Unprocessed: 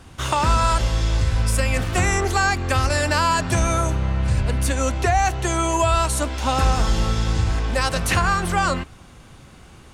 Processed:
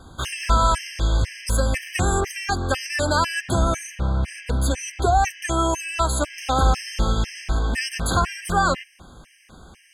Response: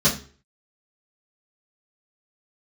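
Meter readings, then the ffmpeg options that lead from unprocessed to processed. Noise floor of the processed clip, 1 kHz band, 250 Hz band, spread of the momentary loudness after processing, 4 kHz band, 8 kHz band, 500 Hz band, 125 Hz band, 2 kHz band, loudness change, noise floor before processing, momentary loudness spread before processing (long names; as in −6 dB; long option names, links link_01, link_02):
−55 dBFS, −1.5 dB, −1.5 dB, 6 LU, −1.5 dB, −2.5 dB, −1.5 dB, −3.5 dB, −3.0 dB, −2.0 dB, −45 dBFS, 4 LU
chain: -af "equalizer=frequency=110:width_type=o:width=0.72:gain=-5,afftfilt=real='re*gt(sin(2*PI*2*pts/sr)*(1-2*mod(floor(b*sr/1024/1600),2)),0)':imag='im*gt(sin(2*PI*2*pts/sr)*(1-2*mod(floor(b*sr/1024/1600),2)),0)':win_size=1024:overlap=0.75,volume=1.5dB"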